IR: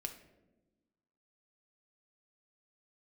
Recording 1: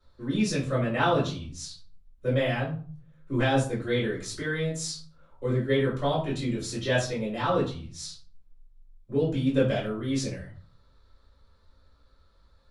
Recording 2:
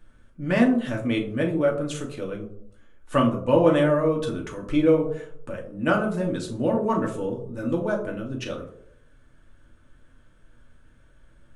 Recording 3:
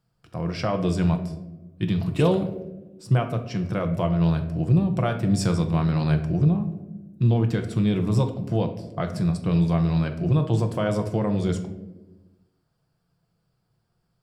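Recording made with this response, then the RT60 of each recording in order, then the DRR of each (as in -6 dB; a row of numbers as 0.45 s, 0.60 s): 3; 0.45 s, 0.70 s, 1.1 s; -8.0 dB, -0.5 dB, 4.5 dB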